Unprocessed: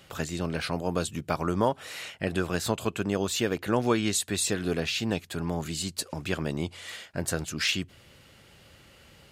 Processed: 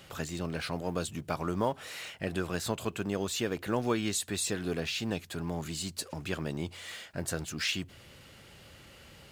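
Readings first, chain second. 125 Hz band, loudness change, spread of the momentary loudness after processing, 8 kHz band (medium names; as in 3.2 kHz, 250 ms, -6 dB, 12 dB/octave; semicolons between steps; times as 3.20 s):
-4.5 dB, -4.5 dB, 21 LU, -4.5 dB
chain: companding laws mixed up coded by mu; trim -5.5 dB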